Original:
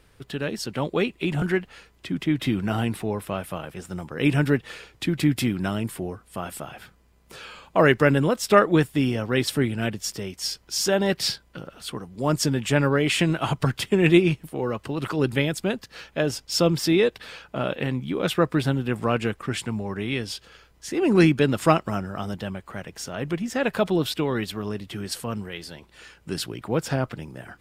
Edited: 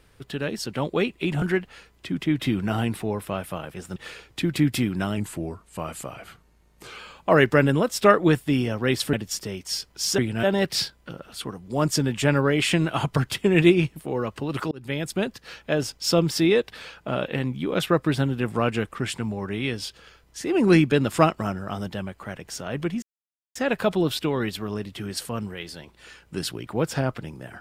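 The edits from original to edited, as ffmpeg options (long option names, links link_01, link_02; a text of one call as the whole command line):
ffmpeg -i in.wav -filter_complex "[0:a]asplit=9[link_01][link_02][link_03][link_04][link_05][link_06][link_07][link_08][link_09];[link_01]atrim=end=3.962[link_10];[link_02]atrim=start=4.598:end=5.814[link_11];[link_03]atrim=start=5.81:end=7.46,asetpts=PTS-STARTPTS,asetrate=40131,aresample=44100[link_12];[link_04]atrim=start=7.456:end=9.612[link_13];[link_05]atrim=start=9.858:end=10.912[link_14];[link_06]atrim=start=9.608:end=9.862[link_15];[link_07]atrim=start=10.908:end=15.19,asetpts=PTS-STARTPTS,afade=type=out:start_time=4.278:duration=0.004:curve=hsin[link_16];[link_08]atrim=start=15.19:end=23.5,asetpts=PTS-STARTPTS,afade=type=in:duration=0.43,afade=type=out:start_time=8.306:duration=0.004:curve=hsin,apad=pad_dur=0.53[link_17];[link_09]atrim=start=23.5,asetpts=PTS-STARTPTS,afade=type=in:duration=0.004:curve=hsin[link_18];[link_10][link_11]acrossfade=duration=0.004:curve1=hsin:curve2=hsin[link_19];[link_19][link_12]acrossfade=duration=0.004:curve1=hsin:curve2=hsin[link_20];[link_20][link_13]acrossfade=duration=0.004:curve1=hsin:curve2=hsin[link_21];[link_21][link_14]acrossfade=duration=0.004:curve1=hsin:curve2=hsin[link_22];[link_22][link_15]acrossfade=duration=0.004:curve1=hsin:curve2=hsin[link_23];[link_16][link_17][link_18]concat=n=3:v=0:a=1[link_24];[link_23][link_24]acrossfade=duration=0.004:curve1=hsin:curve2=hsin" out.wav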